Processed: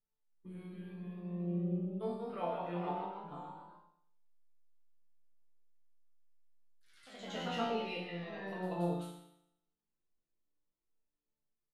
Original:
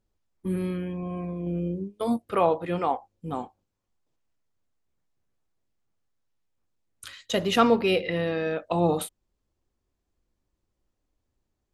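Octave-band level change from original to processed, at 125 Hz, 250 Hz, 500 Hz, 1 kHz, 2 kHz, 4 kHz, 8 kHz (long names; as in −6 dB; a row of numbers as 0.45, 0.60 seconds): −9.0, −11.5, −14.5, −12.5, −13.0, −13.5, −19.5 decibels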